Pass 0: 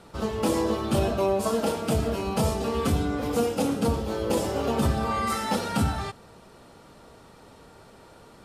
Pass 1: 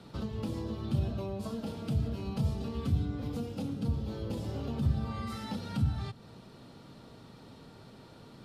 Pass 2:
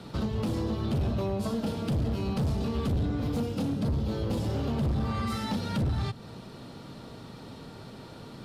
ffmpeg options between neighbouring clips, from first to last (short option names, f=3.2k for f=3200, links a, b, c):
-filter_complex "[0:a]equalizer=f=125:t=o:w=1:g=10,equalizer=f=250:t=o:w=1:g=7,equalizer=f=4k:t=o:w=1:g=8,equalizer=f=8k:t=o:w=1:g=-4,acrossover=split=130[a][b];[b]acompressor=threshold=-35dB:ratio=3[c];[a][c]amix=inputs=2:normalize=0,volume=-6.5dB"
-af "volume=32dB,asoftclip=hard,volume=-32dB,volume=7.5dB"